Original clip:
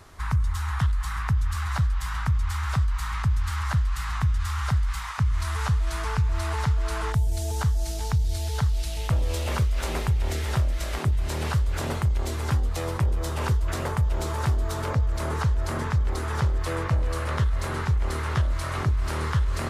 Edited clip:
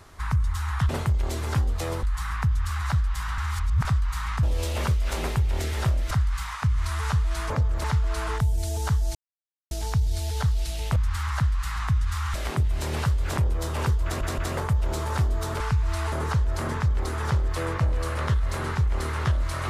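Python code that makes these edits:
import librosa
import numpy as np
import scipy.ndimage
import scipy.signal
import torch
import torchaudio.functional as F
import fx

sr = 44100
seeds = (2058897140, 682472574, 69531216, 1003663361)

y = fx.edit(x, sr, fx.reverse_span(start_s=2.24, length_s=0.47),
    fx.swap(start_s=3.29, length_s=1.38, other_s=9.14, other_length_s=1.68),
    fx.swap(start_s=6.06, length_s=0.52, other_s=14.88, other_length_s=0.34),
    fx.insert_silence(at_s=7.89, length_s=0.56),
    fx.move(start_s=11.85, length_s=1.14, to_s=0.89),
    fx.stutter(start_s=13.66, slice_s=0.17, count=3), tone=tone)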